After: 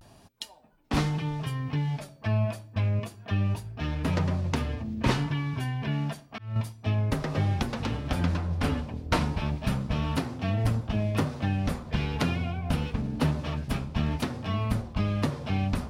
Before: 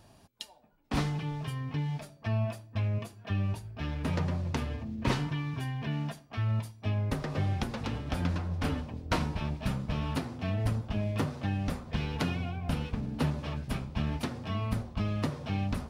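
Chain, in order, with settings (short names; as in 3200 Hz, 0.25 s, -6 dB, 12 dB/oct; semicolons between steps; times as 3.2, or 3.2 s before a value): 5.93–6.55 auto swell 0.375 s; vibrato 0.31 Hz 36 cents; gain +4 dB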